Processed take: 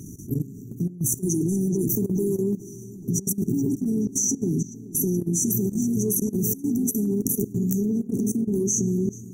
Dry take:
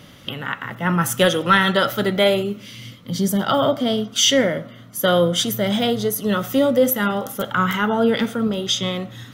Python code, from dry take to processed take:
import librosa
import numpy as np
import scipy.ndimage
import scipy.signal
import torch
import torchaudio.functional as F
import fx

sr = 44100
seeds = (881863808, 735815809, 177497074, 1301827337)

p1 = fx.dynamic_eq(x, sr, hz=1600.0, q=3.3, threshold_db=-34.0, ratio=4.0, max_db=-5)
p2 = fx.brickwall_bandstop(p1, sr, low_hz=430.0, high_hz=5700.0)
p3 = fx.over_compress(p2, sr, threshold_db=-27.0, ratio=-1.0)
p4 = fx.peak_eq(p3, sr, hz=3900.0, db=6.0, octaves=1.8)
p5 = fx.comb_fb(p4, sr, f0_hz=85.0, decay_s=1.4, harmonics='all', damping=0.0, mix_pct=30)
p6 = p5 + fx.echo_filtered(p5, sr, ms=428, feedback_pct=73, hz=4200.0, wet_db=-11.0, dry=0)
p7 = fx.level_steps(p6, sr, step_db=16)
y = p7 * 10.0 ** (9.0 / 20.0)